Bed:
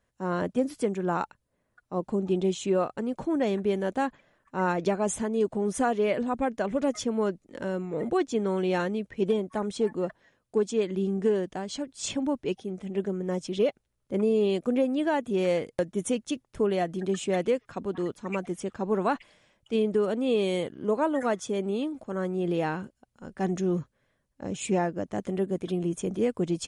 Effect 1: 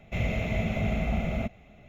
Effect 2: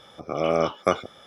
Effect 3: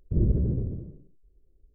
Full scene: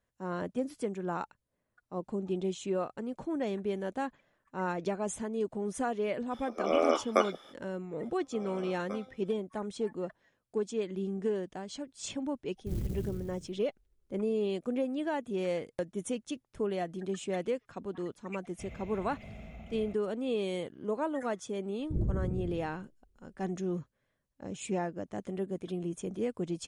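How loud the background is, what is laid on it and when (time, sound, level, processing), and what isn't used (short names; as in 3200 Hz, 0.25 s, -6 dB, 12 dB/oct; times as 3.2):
bed -7 dB
6.29 add 2 -4 dB, fades 0.05 s + steep high-pass 260 Hz
8.03 add 2 -7.5 dB + resonator 260 Hz, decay 0.28 s, mix 90%
12.55 add 3 -11.5 dB + clock jitter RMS 0.09 ms
18.47 add 1 -17 dB + limiter -21.5 dBFS
21.79 add 3 -8 dB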